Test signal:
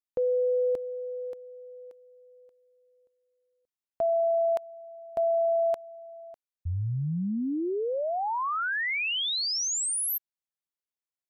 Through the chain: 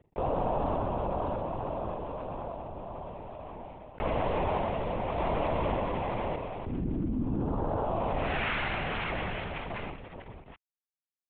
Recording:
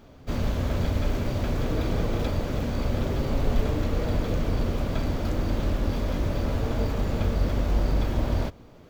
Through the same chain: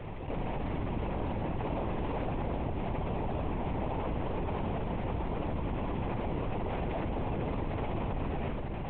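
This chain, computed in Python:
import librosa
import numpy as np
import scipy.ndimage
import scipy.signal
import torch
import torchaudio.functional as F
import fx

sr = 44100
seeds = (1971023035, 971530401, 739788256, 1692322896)

p1 = fx.cvsd(x, sr, bps=16000)
p2 = scipy.signal.sosfilt(scipy.signal.butter(4, 1200.0, 'lowpass', fs=sr, output='sos'), p1)
p3 = fx.noise_vocoder(p2, sr, seeds[0], bands=4)
p4 = p3 + fx.echo_multitap(p3, sr, ms=(50, 87, 120, 239, 602), db=(-5.0, -14.0, -7.0, -13.5, -9.0), dry=0)
p5 = fx.lpc_vocoder(p4, sr, seeds[1], excitation='whisper', order=10)
p6 = fx.env_flatten(p5, sr, amount_pct=70)
y = p6 * librosa.db_to_amplitude(-7.0)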